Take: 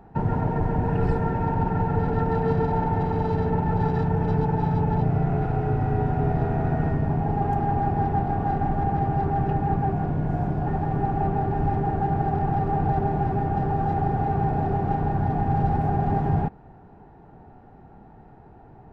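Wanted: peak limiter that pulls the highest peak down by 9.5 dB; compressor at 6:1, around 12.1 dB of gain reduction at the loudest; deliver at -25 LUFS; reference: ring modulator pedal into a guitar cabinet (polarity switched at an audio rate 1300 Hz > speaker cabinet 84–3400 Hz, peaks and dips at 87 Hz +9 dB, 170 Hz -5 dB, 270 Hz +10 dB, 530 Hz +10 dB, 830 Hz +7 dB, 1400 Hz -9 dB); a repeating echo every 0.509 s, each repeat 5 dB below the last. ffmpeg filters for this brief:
-af "acompressor=threshold=-32dB:ratio=6,alimiter=level_in=7dB:limit=-24dB:level=0:latency=1,volume=-7dB,aecho=1:1:509|1018|1527|2036|2545|3054|3563:0.562|0.315|0.176|0.0988|0.0553|0.031|0.0173,aeval=exprs='val(0)*sgn(sin(2*PI*1300*n/s))':c=same,highpass=84,equalizer=f=87:t=q:w=4:g=9,equalizer=f=170:t=q:w=4:g=-5,equalizer=f=270:t=q:w=4:g=10,equalizer=f=530:t=q:w=4:g=10,equalizer=f=830:t=q:w=4:g=7,equalizer=f=1.4k:t=q:w=4:g=-9,lowpass=f=3.4k:w=0.5412,lowpass=f=3.4k:w=1.3066,volume=12dB"

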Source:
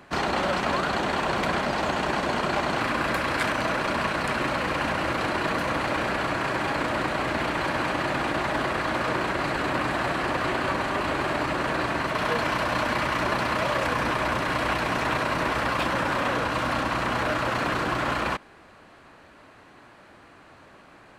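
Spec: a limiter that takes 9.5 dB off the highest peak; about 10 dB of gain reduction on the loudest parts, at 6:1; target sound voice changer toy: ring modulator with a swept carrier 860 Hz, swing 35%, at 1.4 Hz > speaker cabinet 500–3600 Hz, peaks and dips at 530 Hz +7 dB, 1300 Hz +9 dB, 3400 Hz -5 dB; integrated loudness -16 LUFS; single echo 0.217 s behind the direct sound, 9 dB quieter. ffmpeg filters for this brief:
-af "acompressor=threshold=-33dB:ratio=6,alimiter=level_in=6.5dB:limit=-24dB:level=0:latency=1,volume=-6.5dB,aecho=1:1:217:0.355,aeval=exprs='val(0)*sin(2*PI*860*n/s+860*0.35/1.4*sin(2*PI*1.4*n/s))':c=same,highpass=500,equalizer=f=530:t=q:w=4:g=7,equalizer=f=1.3k:t=q:w=4:g=9,equalizer=f=3.4k:t=q:w=4:g=-5,lowpass=f=3.6k:w=0.5412,lowpass=f=3.6k:w=1.3066,volume=23.5dB"

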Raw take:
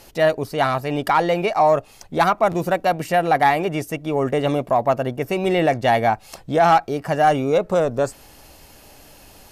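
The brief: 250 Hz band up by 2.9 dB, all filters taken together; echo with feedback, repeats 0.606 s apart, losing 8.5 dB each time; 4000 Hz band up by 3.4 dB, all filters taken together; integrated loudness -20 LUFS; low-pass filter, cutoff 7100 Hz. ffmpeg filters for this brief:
-af "lowpass=7.1k,equalizer=f=250:t=o:g=4,equalizer=f=4k:t=o:g=5,aecho=1:1:606|1212|1818|2424:0.376|0.143|0.0543|0.0206,volume=-1.5dB"

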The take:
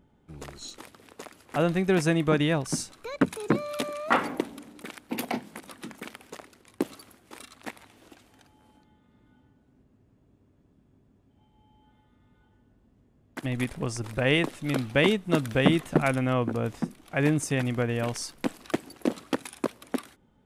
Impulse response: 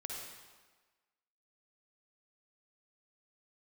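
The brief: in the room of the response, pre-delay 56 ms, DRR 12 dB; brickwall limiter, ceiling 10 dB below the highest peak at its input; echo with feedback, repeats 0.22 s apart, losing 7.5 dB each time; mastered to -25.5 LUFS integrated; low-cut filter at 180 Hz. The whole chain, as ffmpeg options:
-filter_complex "[0:a]highpass=180,alimiter=limit=-16dB:level=0:latency=1,aecho=1:1:220|440|660|880|1100:0.422|0.177|0.0744|0.0312|0.0131,asplit=2[a][b];[1:a]atrim=start_sample=2205,adelay=56[c];[b][c]afir=irnorm=-1:irlink=0,volume=-11.5dB[d];[a][d]amix=inputs=2:normalize=0,volume=4.5dB"

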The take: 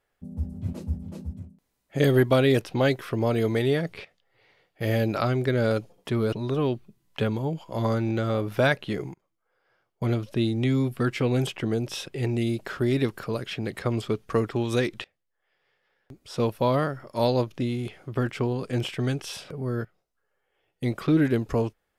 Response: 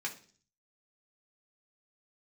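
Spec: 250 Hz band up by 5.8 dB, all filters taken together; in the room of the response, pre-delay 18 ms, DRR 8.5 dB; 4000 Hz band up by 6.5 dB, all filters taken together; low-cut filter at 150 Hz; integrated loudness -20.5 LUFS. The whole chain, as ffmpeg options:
-filter_complex "[0:a]highpass=150,equalizer=f=250:t=o:g=7.5,equalizer=f=4k:t=o:g=8,asplit=2[a][b];[1:a]atrim=start_sample=2205,adelay=18[c];[b][c]afir=irnorm=-1:irlink=0,volume=-11dB[d];[a][d]amix=inputs=2:normalize=0,volume=2.5dB"

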